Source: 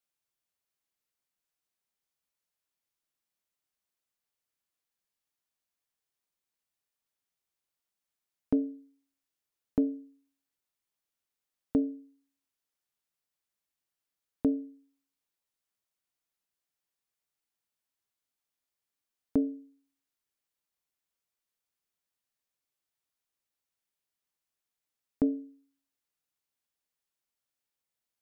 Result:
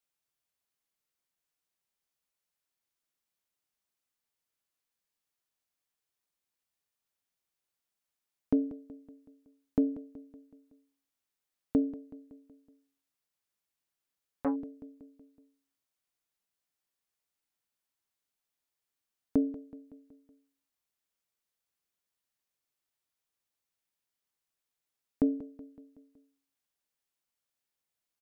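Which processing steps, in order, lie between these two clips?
feedback echo 0.187 s, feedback 55%, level -16 dB; 12.03–14.56 core saturation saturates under 690 Hz

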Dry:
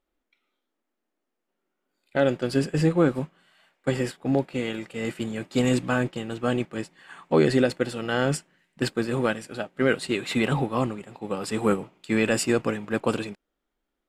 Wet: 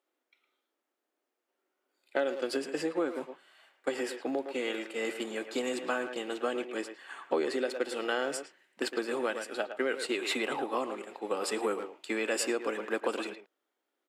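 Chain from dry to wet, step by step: speakerphone echo 0.11 s, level -10 dB; compressor 6:1, threshold -25 dBFS, peak gain reduction 10.5 dB; HPF 310 Hz 24 dB/oct

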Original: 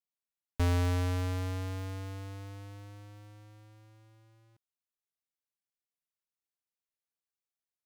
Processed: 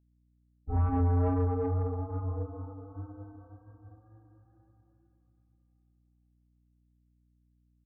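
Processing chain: loudest bins only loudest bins 16; bell 92 Hz -6 dB 0.21 oct; reverb RT60 3.4 s, pre-delay 77 ms; wow and flutter 18 cents; comb 2.5 ms, depth 93%; flutter echo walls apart 5.7 m, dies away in 0.22 s; soft clip -21 dBFS, distortion -12 dB; hum 60 Hz, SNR 24 dB; upward expander 1.5:1, over -47 dBFS

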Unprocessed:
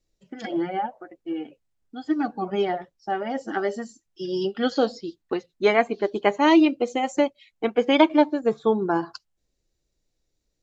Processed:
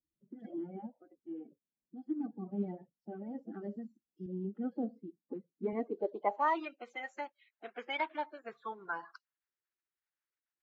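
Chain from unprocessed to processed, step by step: bin magnitudes rounded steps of 30 dB; band-pass sweep 220 Hz -> 1600 Hz, 5.61–6.7; 4.26–5.73 BPF 160–2400 Hz; gain -6 dB

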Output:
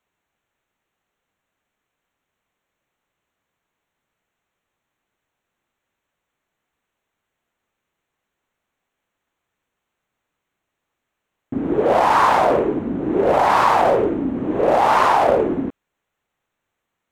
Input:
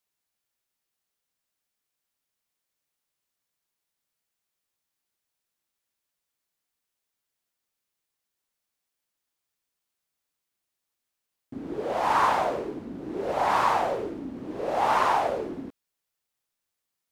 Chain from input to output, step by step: Wiener smoothing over 9 samples; in parallel at 0 dB: negative-ratio compressor -28 dBFS, ratio -0.5; on the sum: gain +6 dB

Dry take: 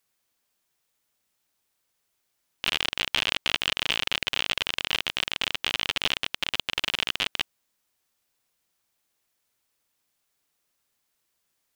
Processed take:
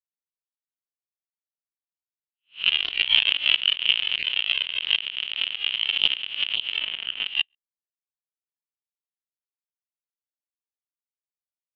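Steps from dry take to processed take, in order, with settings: spectral swells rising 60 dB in 0.51 s; 6.78–7.26 LPF 3500 Hz 6 dB/oct; outdoor echo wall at 23 m, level -19 dB; spectral expander 2.5:1

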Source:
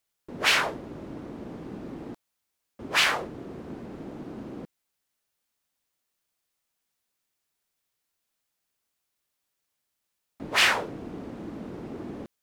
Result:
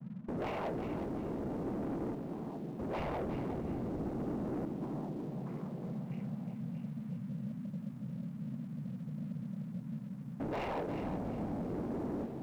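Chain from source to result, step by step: median filter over 25 samples; 2.98–4.35 low shelf 250 Hz +8 dB; 11.03–11.61 comb 1.3 ms, depth 69%; band noise 130–230 Hz -52 dBFS; compressor 2.5:1, threshold -39 dBFS, peak gain reduction 9.5 dB; rippled Chebyshev low-pass 2900 Hz, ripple 6 dB; tilt shelf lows +8 dB, about 1100 Hz; delay with a stepping band-pass 0.63 s, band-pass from 320 Hz, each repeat 0.7 oct, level -9 dB; vocal rider within 4 dB 2 s; sample leveller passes 3; lo-fi delay 0.36 s, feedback 35%, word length 10-bit, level -8 dB; gain -5.5 dB

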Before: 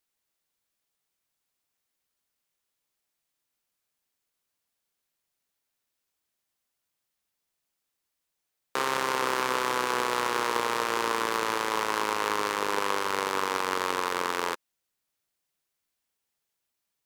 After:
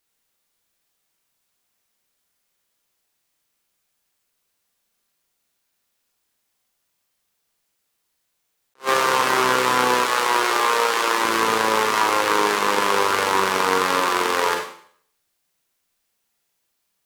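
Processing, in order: 9.94–11.24 low shelf 240 Hz -11.5 dB; Schroeder reverb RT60 0.57 s, combs from 32 ms, DRR 1 dB; attack slew limiter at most 370 dB/s; gain +6.5 dB

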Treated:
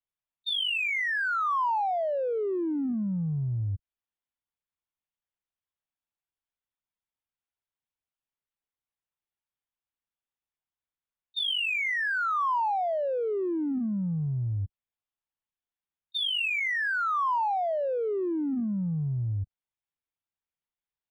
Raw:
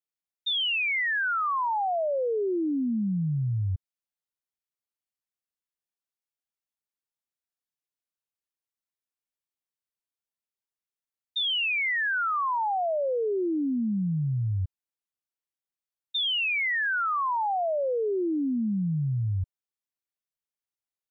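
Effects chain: LPC vocoder at 8 kHz pitch kept; in parallel at -10.5 dB: soft clip -34 dBFS, distortion -11 dB; on the sum: bell 1000 Hz +3 dB; gain -3 dB

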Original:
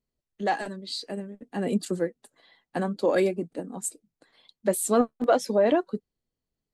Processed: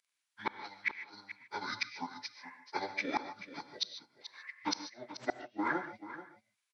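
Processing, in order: pitch shift by moving bins -11.5 st; HPF 1300 Hz 12 dB/oct; transient shaper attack +3 dB, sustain -4 dB; flipped gate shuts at -29 dBFS, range -36 dB; echo 0.434 s -13 dB; non-linear reverb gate 0.17 s rising, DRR 10.5 dB; gain +10.5 dB

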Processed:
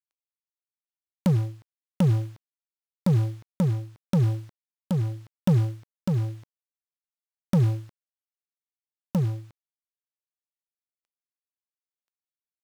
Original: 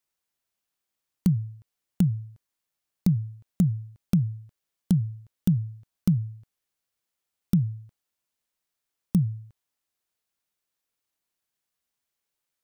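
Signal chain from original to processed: G.711 law mismatch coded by A; in parallel at -2 dB: negative-ratio compressor -26 dBFS, ratio -0.5; on the sum: overdrive pedal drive 29 dB, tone 2500 Hz, clips at -8 dBFS; tremolo 0.91 Hz, depth 44%; gain -3 dB

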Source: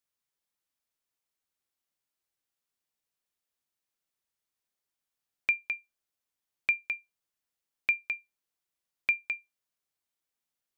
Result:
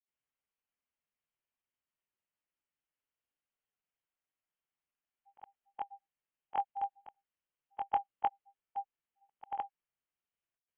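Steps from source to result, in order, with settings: short-time reversal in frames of 46 ms; grains, spray 0.368 s, pitch spread up and down by 0 st; inverted band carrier 3200 Hz; gain +1 dB

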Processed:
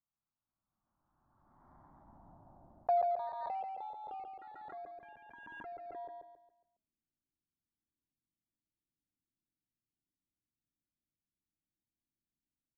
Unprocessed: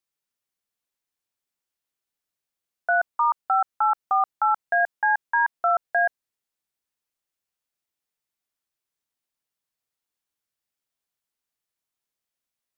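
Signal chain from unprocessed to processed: low-pass opened by the level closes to 560 Hz, open at -21.5 dBFS; de-hum 324 Hz, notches 4; limiter -23.5 dBFS, peak gain reduction 10 dB; decimation with a swept rate 13×, swing 60% 0.71 Hz; low-pass sweep 1300 Hz -> 330 Hz, 1.17–4.68; envelope phaser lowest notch 460 Hz, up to 1400 Hz, full sweep at -43.5 dBFS; feedback echo 0.138 s, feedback 37%, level -4 dB; backwards sustainer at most 29 dB/s; gain +2 dB

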